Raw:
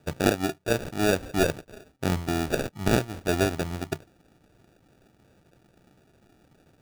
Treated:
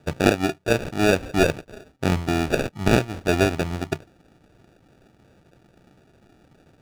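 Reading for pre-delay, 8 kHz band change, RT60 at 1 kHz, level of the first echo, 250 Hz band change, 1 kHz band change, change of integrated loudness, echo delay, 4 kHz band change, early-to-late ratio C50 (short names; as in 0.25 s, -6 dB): none, +1.0 dB, none, none, +4.5 dB, +4.5 dB, +4.5 dB, none, +3.5 dB, none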